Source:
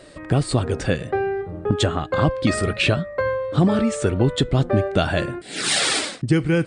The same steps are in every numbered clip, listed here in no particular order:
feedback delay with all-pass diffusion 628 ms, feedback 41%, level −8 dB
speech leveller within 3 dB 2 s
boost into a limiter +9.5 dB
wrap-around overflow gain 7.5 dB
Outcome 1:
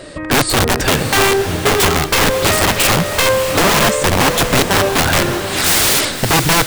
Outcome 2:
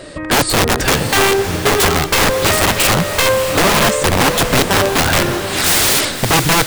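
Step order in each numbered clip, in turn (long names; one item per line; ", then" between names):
speech leveller, then boost into a limiter, then wrap-around overflow, then feedback delay with all-pass diffusion
boost into a limiter, then speech leveller, then wrap-around overflow, then feedback delay with all-pass diffusion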